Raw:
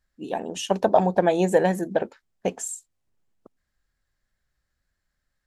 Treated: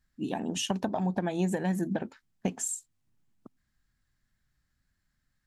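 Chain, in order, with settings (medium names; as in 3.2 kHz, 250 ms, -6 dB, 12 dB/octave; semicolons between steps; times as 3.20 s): compression 4:1, threshold -26 dBFS, peak gain reduction 12 dB; graphic EQ 125/250/500 Hz +6/+6/-9 dB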